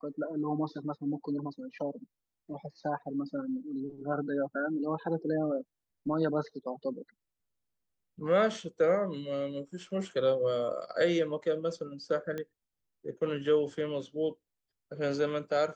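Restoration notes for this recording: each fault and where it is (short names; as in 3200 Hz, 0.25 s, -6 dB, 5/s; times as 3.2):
12.38 pop -24 dBFS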